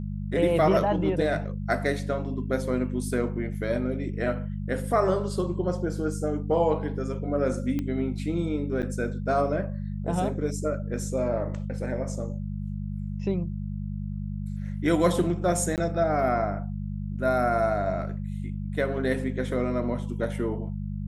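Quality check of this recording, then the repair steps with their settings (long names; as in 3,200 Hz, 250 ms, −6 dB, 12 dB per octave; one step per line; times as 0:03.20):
mains hum 50 Hz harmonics 4 −32 dBFS
0:07.79: click −18 dBFS
0:08.82–0:08.83: drop-out 8 ms
0:15.76–0:15.78: drop-out 18 ms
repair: click removal
hum removal 50 Hz, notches 4
repair the gap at 0:08.82, 8 ms
repair the gap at 0:15.76, 18 ms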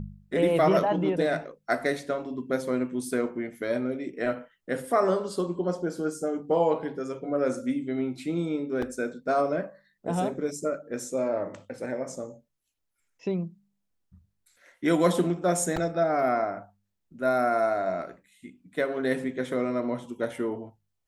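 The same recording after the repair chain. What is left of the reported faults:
0:07.79: click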